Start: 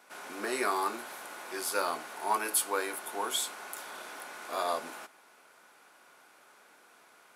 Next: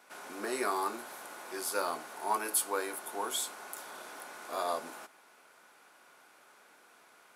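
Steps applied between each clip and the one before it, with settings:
dynamic equaliser 2,500 Hz, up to −4 dB, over −49 dBFS, Q 0.78
level −1 dB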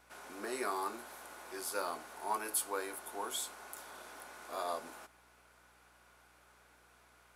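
mains hum 60 Hz, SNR 31 dB
level −4.5 dB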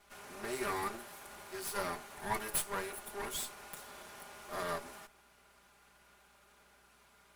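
lower of the sound and its delayed copy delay 5 ms
level +1.5 dB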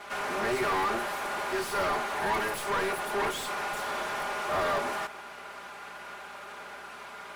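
mid-hump overdrive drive 33 dB, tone 1,400 Hz, clips at −18.5 dBFS

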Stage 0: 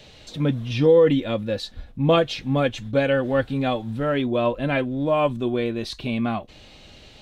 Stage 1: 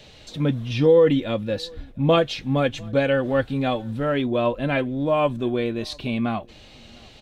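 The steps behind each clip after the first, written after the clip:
slap from a distant wall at 120 metres, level −27 dB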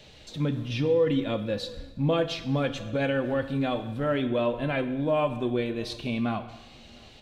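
brickwall limiter −13.5 dBFS, peak gain reduction 7 dB
dense smooth reverb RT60 1.1 s, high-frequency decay 0.9×, DRR 9 dB
level −4 dB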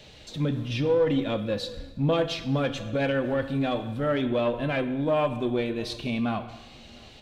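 one-sided soft clipper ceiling −18 dBFS
level +2 dB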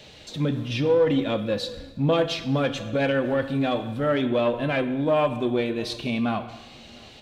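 low-shelf EQ 64 Hz −10 dB
level +3 dB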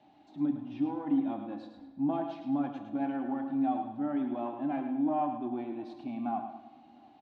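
pair of resonant band-passes 480 Hz, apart 1.4 octaves
repeating echo 107 ms, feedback 33%, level −8 dB

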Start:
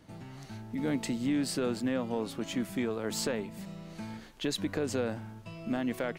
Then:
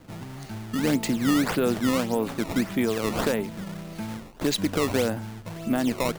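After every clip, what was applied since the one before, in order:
sample-and-hold swept by an LFO 16×, swing 160% 1.7 Hz
level +7.5 dB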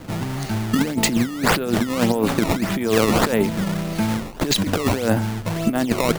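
compressor whose output falls as the input rises −27 dBFS, ratio −0.5
level +9 dB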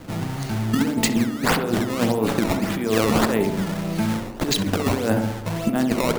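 tape delay 65 ms, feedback 68%, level −4.5 dB, low-pass 1,100 Hz
level −2.5 dB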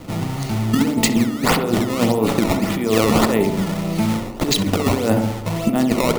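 notch filter 1,600 Hz, Q 6.2
level +3.5 dB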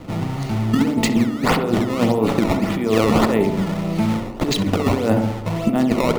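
high-shelf EQ 5,100 Hz −10 dB

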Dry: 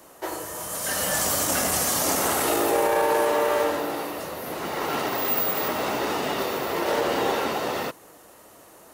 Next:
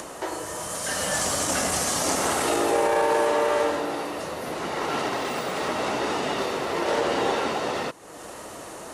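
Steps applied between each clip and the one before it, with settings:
low-pass filter 9,900 Hz 24 dB per octave
upward compression, threshold −27 dBFS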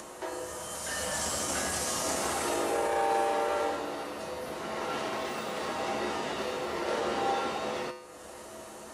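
tuned comb filter 72 Hz, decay 0.79 s, harmonics odd, mix 80%
level +4.5 dB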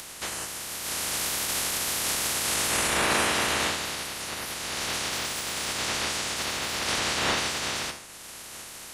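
ceiling on every frequency bin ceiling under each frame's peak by 28 dB
level +3.5 dB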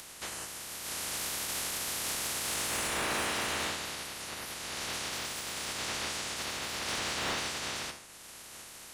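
gain into a clipping stage and back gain 21.5 dB
level −6.5 dB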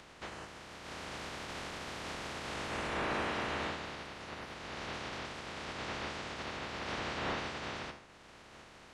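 head-to-tape spacing loss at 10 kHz 27 dB
level +1.5 dB

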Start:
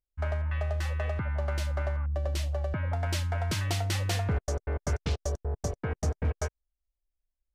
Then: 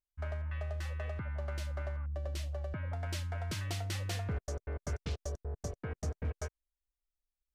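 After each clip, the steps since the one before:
parametric band 850 Hz −3.5 dB 0.48 octaves
level −7.5 dB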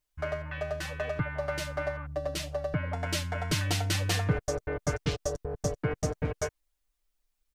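comb filter 6.7 ms, depth 78%
level +8.5 dB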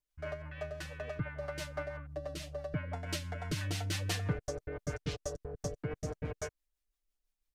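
rotating-speaker cabinet horn 6 Hz
level −5 dB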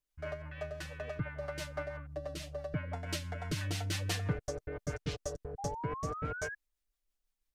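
sound drawn into the spectrogram rise, 0:05.58–0:06.55, 780–1,700 Hz −42 dBFS

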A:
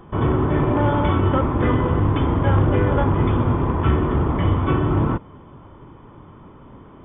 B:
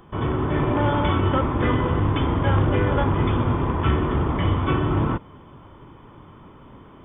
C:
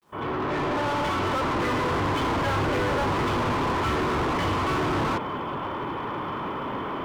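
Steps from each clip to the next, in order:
high-shelf EQ 2,300 Hz +9.5 dB; automatic gain control gain up to 3 dB; level −5.5 dB
fade in at the beginning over 2.07 s; mid-hump overdrive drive 38 dB, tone 1,900 Hz, clips at −11 dBFS; bit-depth reduction 10 bits, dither none; level −7.5 dB

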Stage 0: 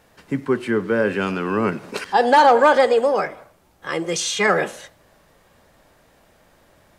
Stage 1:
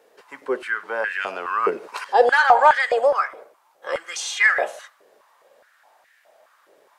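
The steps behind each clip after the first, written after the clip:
high-pass on a step sequencer 4.8 Hz 430–1,800 Hz
level −5 dB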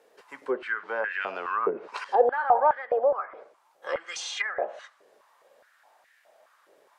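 treble cut that deepens with the level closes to 850 Hz, closed at −17 dBFS
level −4 dB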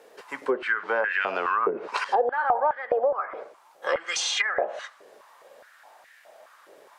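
downward compressor 4 to 1, threshold −30 dBFS, peak gain reduction 13.5 dB
level +8.5 dB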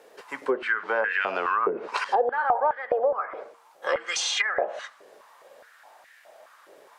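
hum removal 233.2 Hz, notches 2

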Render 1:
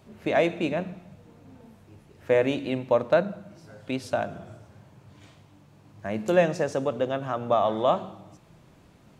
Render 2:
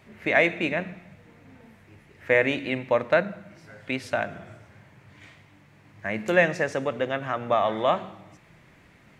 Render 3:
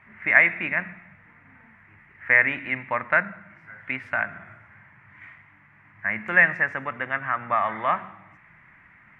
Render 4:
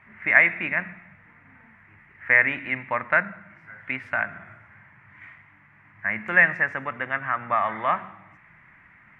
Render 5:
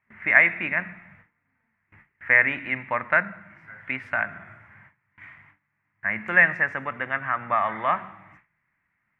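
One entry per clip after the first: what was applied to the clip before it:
parametric band 2,000 Hz +14 dB 0.84 octaves; level −1.5 dB
drawn EQ curve 210 Hz 0 dB, 480 Hz −9 dB, 1,000 Hz +8 dB, 2,000 Hz +13 dB, 4,100 Hz −17 dB; level −4.5 dB
no processing that can be heard
noise gate with hold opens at −41 dBFS

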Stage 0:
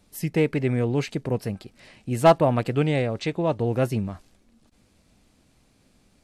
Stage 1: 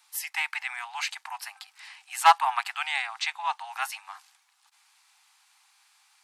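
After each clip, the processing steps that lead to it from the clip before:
Butterworth high-pass 790 Hz 96 dB per octave
level +5 dB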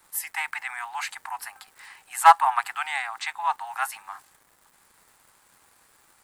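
surface crackle 410 per second −48 dBFS
flat-topped bell 3,800 Hz −8.5 dB
level +4 dB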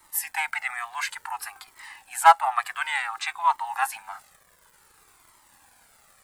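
in parallel at +1 dB: speech leveller within 4 dB 0.5 s
on the sum: flanger whose copies keep moving one way falling 0.56 Hz
level −2.5 dB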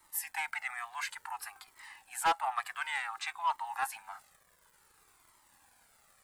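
soft clipping −15 dBFS, distortion −7 dB
level −7.5 dB

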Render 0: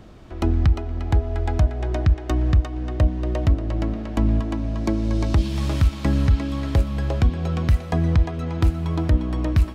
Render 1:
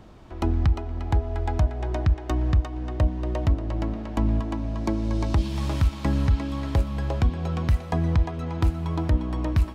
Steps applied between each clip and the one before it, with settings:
parametric band 920 Hz +5.5 dB 0.5 octaves
level −3.5 dB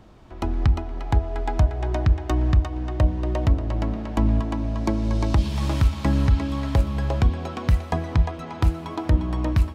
hum removal 82.45 Hz, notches 7
automatic gain control gain up to 4.5 dB
level −1.5 dB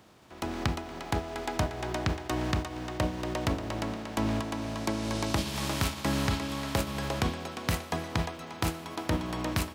compressing power law on the bin magnitudes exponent 0.66
high-pass filter 98 Hz 12 dB per octave
level −7 dB

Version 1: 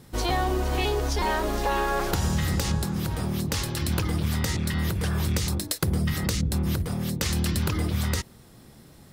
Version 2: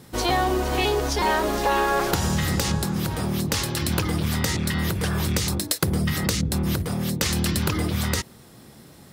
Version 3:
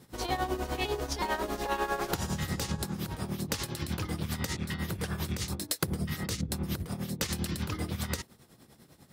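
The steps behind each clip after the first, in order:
high-pass filter 120 Hz 6 dB per octave; level +4.5 dB
shaped tremolo triangle 10 Hz, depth 80%; level −6 dB

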